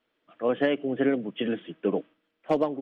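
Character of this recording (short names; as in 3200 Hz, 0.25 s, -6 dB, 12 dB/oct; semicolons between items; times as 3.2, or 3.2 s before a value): noise floor -78 dBFS; spectral tilt -4.5 dB/oct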